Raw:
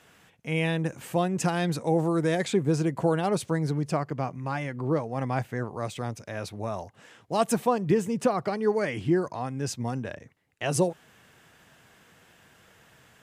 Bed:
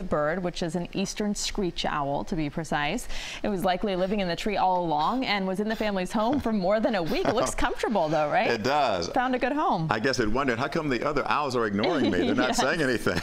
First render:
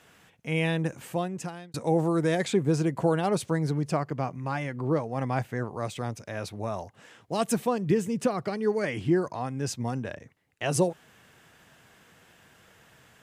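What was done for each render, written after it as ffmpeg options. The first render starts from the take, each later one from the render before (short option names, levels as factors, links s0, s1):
-filter_complex "[0:a]asettb=1/sr,asplit=3[s0][s1][s2];[s0]atrim=end=7.344[s3];[s1]atrim=start=7.34:end=8.84,asetpts=PTS-STARTPTS,afade=t=in:d=0.004:c=qsin,afade=t=out:st=1.496:d=0.004:c=qsin,equalizer=f=860:w=1:g=-5[s4];[s2]atrim=start=8.836[s5];[s3][s4]acrossfade=d=0.004:c1=hsin:c2=qsin[s6];[s6][s5]acrossfade=d=0.004:c1=qsin:c2=hsin,asplit=2[s7][s8];[s7]atrim=end=1.74,asetpts=PTS-STARTPTS,afade=t=out:st=0.88:d=0.86[s9];[s8]atrim=start=1.74,asetpts=PTS-STARTPTS,afade=t=in:d=0.004:c=hsin[s10];[s9][s10]concat=n=2:v=0:a=1"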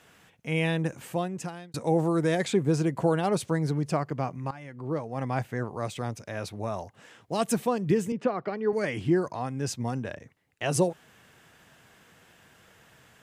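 -filter_complex "[0:a]asettb=1/sr,asplit=3[s0][s1][s2];[s0]atrim=end=8.124[s3];[s1]atrim=start=8.12:end=8.73,asetpts=PTS-STARTPTS,afade=t=in:d=0.004:c=qsin,afade=t=out:st=0.606:d=0.004:c=qsin,highpass=220,lowpass=2600[s4];[s2]atrim=start=8.726[s5];[s3][s4]acrossfade=d=0.004:c1=hsin:c2=qsin[s6];[s6][s5]acrossfade=d=0.004:c1=qsin:c2=hsin,asplit=2[s7][s8];[s7]atrim=end=4.51,asetpts=PTS-STARTPTS,afade=t=out:st=4.506:d=0.004:c=hsin:silence=0.149624[s9];[s8]atrim=start=4.51,asetpts=PTS-STARTPTS,afade=t=in:d=1.22:c=qsin:silence=0.149624[s10];[s9][s10]concat=n=2:v=0:a=1"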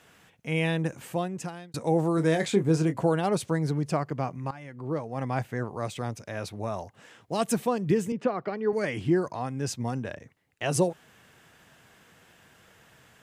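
-filter_complex "[0:a]asettb=1/sr,asplit=3[s0][s1][s2];[s0]atrim=end=2.154[s3];[s1]atrim=start=2.15:end=2.97,asetpts=PTS-STARTPTS,afade=t=in:d=0.004:c=qsin,afade=t=out:st=0.816:d=0.004:c=qsin,asplit=2[s4][s5];[s5]adelay=25,volume=0.376[s6];[s4][s6]amix=inputs=2:normalize=0,atrim=end_sample=36162[s7];[s2]atrim=start=2.966[s8];[s3][s7]acrossfade=d=0.004:c1=hsin:c2=qsin[s9];[s9][s8]acrossfade=d=0.004:c1=qsin:c2=hsin"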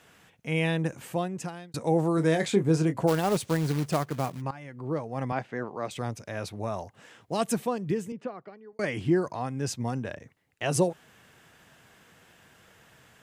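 -filter_complex "[0:a]asplit=3[s0][s1][s2];[s0]afade=t=out:st=3.07:d=0.02[s3];[s1]acrusher=bits=3:mode=log:mix=0:aa=0.000001,afade=t=in:st=3.07:d=0.02,afade=t=out:st=4.4:d=0.02[s4];[s2]afade=t=in:st=4.4:d=0.02[s5];[s3][s4][s5]amix=inputs=3:normalize=0,asettb=1/sr,asplit=3[s6][s7][s8];[s6]atrim=end=5.324[s9];[s7]atrim=start=5.32:end=5.91,asetpts=PTS-STARTPTS,afade=t=in:d=0.004:c=qsin,afade=t=out:st=0.586:d=0.004:c=qsin,highpass=200,lowpass=4500[s10];[s8]atrim=start=5.906[s11];[s9][s10]acrossfade=d=0.004:c1=hsin:c2=qsin[s12];[s12][s11]acrossfade=d=0.004:c1=qsin:c2=hsin,asplit=2[s13][s14];[s13]atrim=end=8.79,asetpts=PTS-STARTPTS,afade=t=out:st=7.33:d=1.46[s15];[s14]atrim=start=8.79,asetpts=PTS-STARTPTS,afade=t=in:d=0.004:c=hsin[s16];[s15][s16]concat=n=2:v=0:a=1"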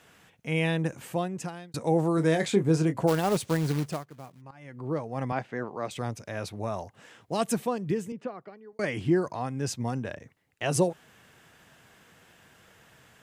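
-filter_complex "[0:a]asplit=3[s0][s1][s2];[s0]atrim=end=4.04,asetpts=PTS-STARTPTS,afade=t=out:st=3.79:d=0.25:silence=0.177828[s3];[s1]atrim=start=4.04:end=4.49,asetpts=PTS-STARTPTS,volume=0.178[s4];[s2]atrim=start=4.49,asetpts=PTS-STARTPTS,afade=t=in:d=0.25:silence=0.177828[s5];[s3][s4][s5]concat=n=3:v=0:a=1"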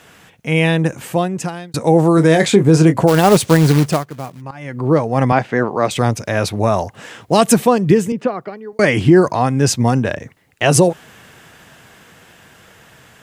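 -af "dynaudnorm=f=430:g=13:m=1.78,alimiter=level_in=3.98:limit=0.891:release=50:level=0:latency=1"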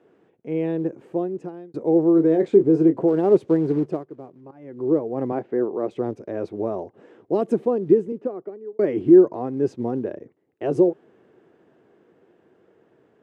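-af "acrusher=bits=6:mode=log:mix=0:aa=0.000001,bandpass=f=370:t=q:w=3.5:csg=0"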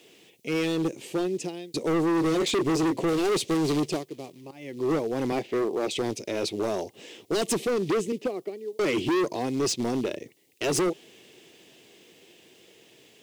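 -af "aexciter=amount=8.8:drive=9.3:freq=2300,volume=12.6,asoftclip=hard,volume=0.0794"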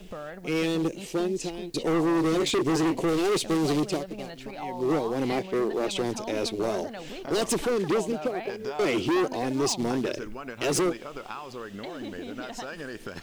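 -filter_complex "[1:a]volume=0.224[s0];[0:a][s0]amix=inputs=2:normalize=0"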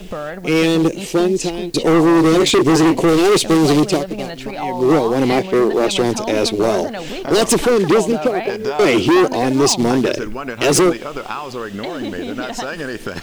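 -af "volume=3.98"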